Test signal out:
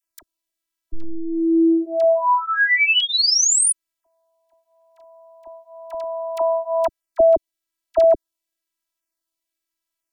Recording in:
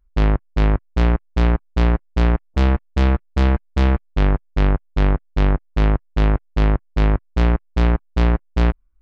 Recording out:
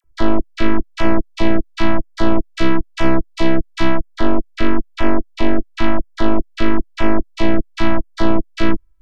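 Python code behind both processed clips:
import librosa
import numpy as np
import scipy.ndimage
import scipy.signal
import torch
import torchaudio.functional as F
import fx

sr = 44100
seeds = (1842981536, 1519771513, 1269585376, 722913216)

y = fx.filter_lfo_notch(x, sr, shape='saw_down', hz=1.0, low_hz=280.0, high_hz=4400.0, q=1.9)
y = fx.robotise(y, sr, hz=328.0)
y = fx.dispersion(y, sr, late='lows', ms=44.0, hz=1000.0)
y = y * librosa.db_to_amplitude(8.0)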